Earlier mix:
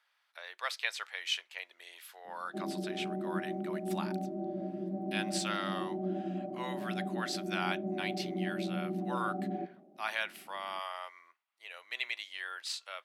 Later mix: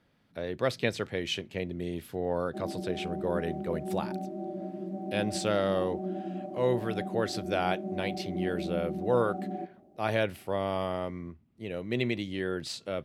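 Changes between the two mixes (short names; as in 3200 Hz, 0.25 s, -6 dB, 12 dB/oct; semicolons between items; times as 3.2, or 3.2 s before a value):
speech: remove HPF 950 Hz 24 dB/oct; background: remove LPF 1100 Hz 6 dB/oct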